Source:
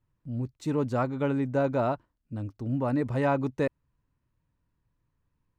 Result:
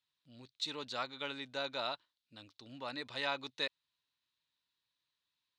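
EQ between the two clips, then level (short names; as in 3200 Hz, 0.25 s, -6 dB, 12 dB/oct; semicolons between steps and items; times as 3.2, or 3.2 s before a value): band-pass 3800 Hz, Q 5.1; +16.0 dB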